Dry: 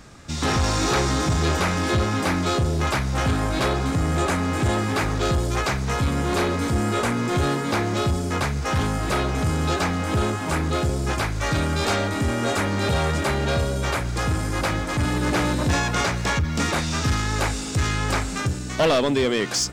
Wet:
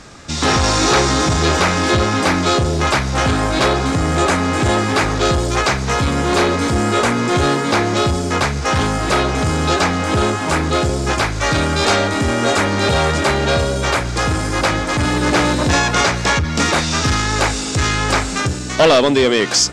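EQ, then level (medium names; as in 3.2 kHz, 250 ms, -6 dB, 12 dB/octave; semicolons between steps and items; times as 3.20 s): distance through air 79 m; tone controls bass -5 dB, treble +5 dB; treble shelf 10 kHz +6.5 dB; +8.5 dB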